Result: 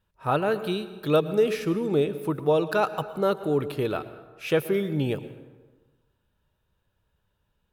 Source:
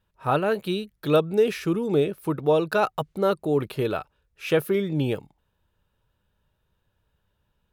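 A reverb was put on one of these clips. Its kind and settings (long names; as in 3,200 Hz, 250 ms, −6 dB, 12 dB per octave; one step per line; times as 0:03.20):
dense smooth reverb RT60 1.3 s, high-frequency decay 0.6×, pre-delay 95 ms, DRR 13 dB
level −1.5 dB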